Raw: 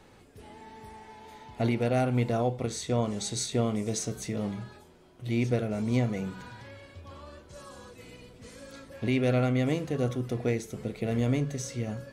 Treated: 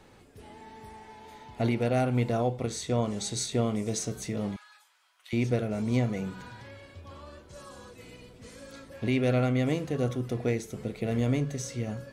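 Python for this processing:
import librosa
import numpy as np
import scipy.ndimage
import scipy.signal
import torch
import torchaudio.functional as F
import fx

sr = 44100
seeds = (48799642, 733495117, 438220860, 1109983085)

y = fx.highpass(x, sr, hz=1100.0, slope=24, at=(4.56, 5.33))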